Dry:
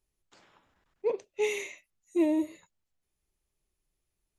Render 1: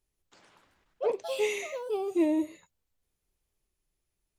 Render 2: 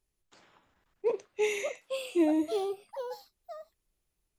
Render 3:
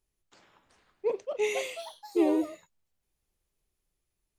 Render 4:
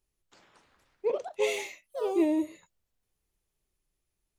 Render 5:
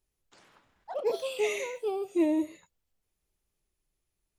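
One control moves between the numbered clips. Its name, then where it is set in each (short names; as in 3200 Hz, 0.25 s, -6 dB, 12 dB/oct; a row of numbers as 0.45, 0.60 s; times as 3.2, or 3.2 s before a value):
echoes that change speed, time: 0.182, 0.803, 0.445, 0.294, 0.119 s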